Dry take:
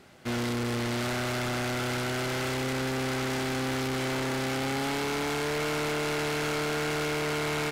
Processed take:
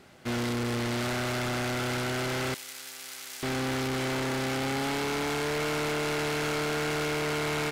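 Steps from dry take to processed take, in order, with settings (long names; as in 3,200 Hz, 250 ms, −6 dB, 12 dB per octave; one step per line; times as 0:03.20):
0:02.54–0:03.43: first difference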